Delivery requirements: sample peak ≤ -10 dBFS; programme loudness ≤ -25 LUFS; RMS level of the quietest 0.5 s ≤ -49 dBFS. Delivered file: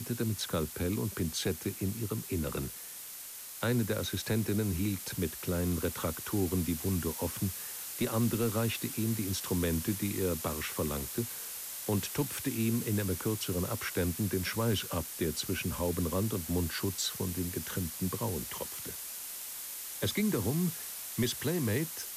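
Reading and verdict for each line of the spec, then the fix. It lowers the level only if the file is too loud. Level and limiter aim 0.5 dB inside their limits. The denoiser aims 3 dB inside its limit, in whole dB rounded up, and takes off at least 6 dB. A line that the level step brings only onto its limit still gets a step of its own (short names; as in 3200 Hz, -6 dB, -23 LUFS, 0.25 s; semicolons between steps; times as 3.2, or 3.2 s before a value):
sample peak -19.0 dBFS: OK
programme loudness -33.0 LUFS: OK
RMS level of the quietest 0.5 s -45 dBFS: fail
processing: denoiser 7 dB, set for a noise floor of -45 dBFS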